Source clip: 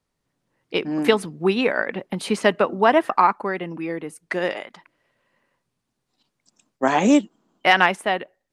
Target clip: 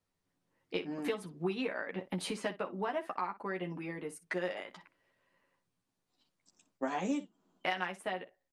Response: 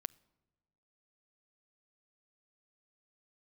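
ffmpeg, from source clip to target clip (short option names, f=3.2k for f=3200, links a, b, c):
-filter_complex "[0:a]acompressor=threshold=-27dB:ratio=4,asplit=2[a][b];[b]aecho=0:1:11|61:0.708|0.178[c];[a][c]amix=inputs=2:normalize=0,volume=-8.5dB"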